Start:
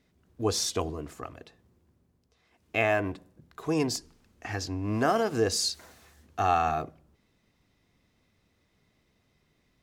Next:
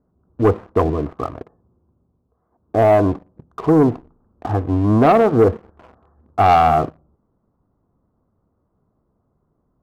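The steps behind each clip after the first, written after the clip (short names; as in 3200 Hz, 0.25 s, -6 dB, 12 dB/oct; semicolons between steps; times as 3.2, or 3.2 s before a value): steep low-pass 1300 Hz 48 dB/oct; sample leveller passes 2; gain +8 dB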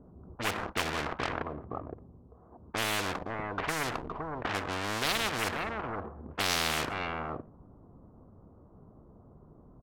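echo 0.516 s -21 dB; low-pass opened by the level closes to 1100 Hz, open at -14.5 dBFS; spectral compressor 10:1; gain -7 dB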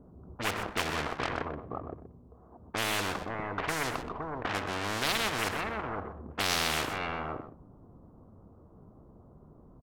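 echo 0.125 s -10.5 dB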